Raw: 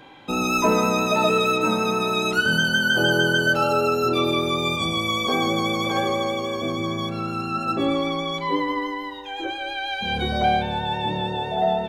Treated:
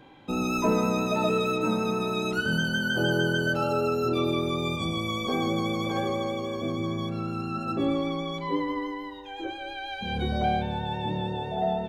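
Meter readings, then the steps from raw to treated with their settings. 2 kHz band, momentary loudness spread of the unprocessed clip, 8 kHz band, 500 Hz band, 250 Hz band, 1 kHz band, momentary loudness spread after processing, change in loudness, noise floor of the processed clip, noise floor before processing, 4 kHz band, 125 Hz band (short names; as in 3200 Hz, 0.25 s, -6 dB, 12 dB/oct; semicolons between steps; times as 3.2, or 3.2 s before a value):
-8.5 dB, 8 LU, -9.0 dB, -4.5 dB, -2.5 dB, -7.0 dB, 8 LU, -5.5 dB, -38 dBFS, -32 dBFS, -9.0 dB, -1.0 dB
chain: low shelf 490 Hz +8.5 dB; gain -9 dB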